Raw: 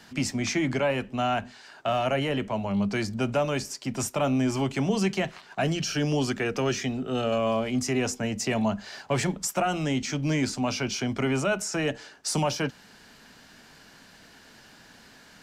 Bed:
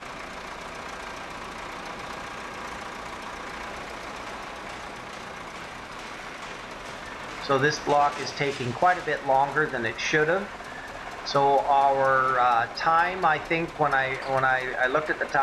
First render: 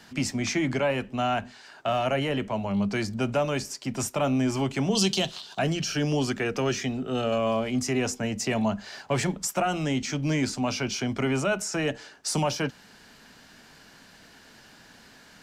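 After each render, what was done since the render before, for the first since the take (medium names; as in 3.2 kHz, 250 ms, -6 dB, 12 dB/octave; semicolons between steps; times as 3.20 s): 4.95–5.59 s: resonant high shelf 2.7 kHz +8.5 dB, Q 3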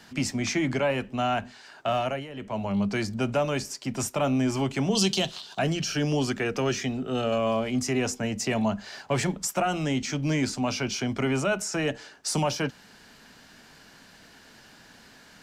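1.98–2.62 s: dip -13.5 dB, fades 0.29 s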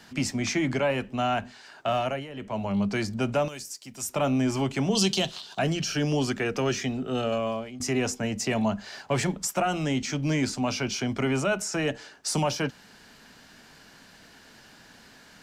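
3.48–4.09 s: pre-emphasis filter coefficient 0.8; 7.04–7.80 s: fade out equal-power, to -18.5 dB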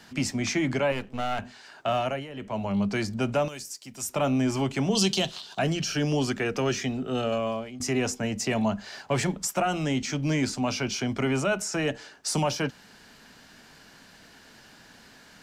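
0.92–1.39 s: partial rectifier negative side -12 dB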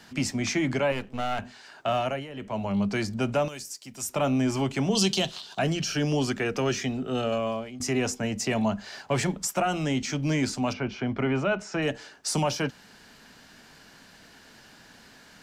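10.72–11.81 s: low-pass 1.8 kHz -> 4 kHz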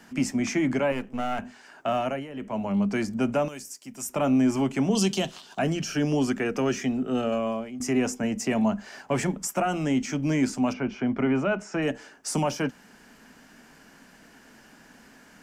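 fifteen-band graphic EQ 100 Hz -8 dB, 250 Hz +5 dB, 4 kHz -10 dB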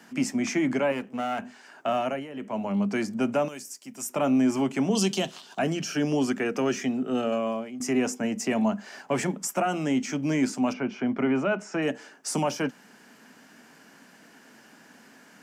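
high-pass 160 Hz 12 dB/octave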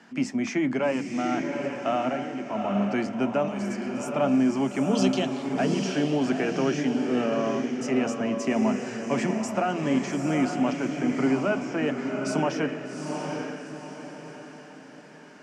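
distance through air 88 m; echo that smears into a reverb 796 ms, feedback 42%, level -4 dB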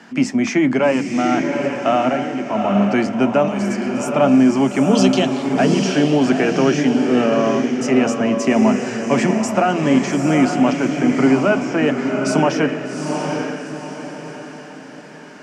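trim +9.5 dB; peak limiter -3 dBFS, peak gain reduction 2 dB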